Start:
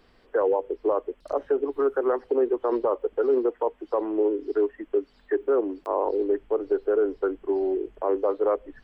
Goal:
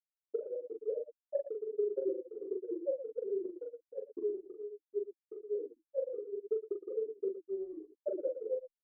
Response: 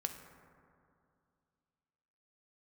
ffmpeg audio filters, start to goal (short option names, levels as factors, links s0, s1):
-filter_complex "[0:a]highpass=f=84:p=1,afftfilt=real='re*gte(hypot(re,im),0.501)':imag='im*gte(hypot(re,im),0.501)':win_size=1024:overlap=0.75,lowpass=1400,equalizer=f=320:w=3.3:g=12,aecho=1:1:3.9:0.51,alimiter=limit=0.106:level=0:latency=1:release=31,acompressor=threshold=0.0224:ratio=5,tremolo=f=11:d=0.95,aecho=1:1:41|115:0.631|0.282,asplit=2[s0][s1];[s1]adelay=3.7,afreqshift=-1.3[s2];[s0][s2]amix=inputs=2:normalize=1,volume=1.58"